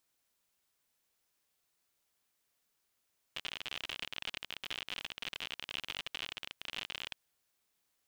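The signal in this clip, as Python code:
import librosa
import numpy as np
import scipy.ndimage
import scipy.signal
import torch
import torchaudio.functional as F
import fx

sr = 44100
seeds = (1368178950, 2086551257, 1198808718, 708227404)

y = fx.geiger_clicks(sr, seeds[0], length_s=3.79, per_s=59.0, level_db=-23.5)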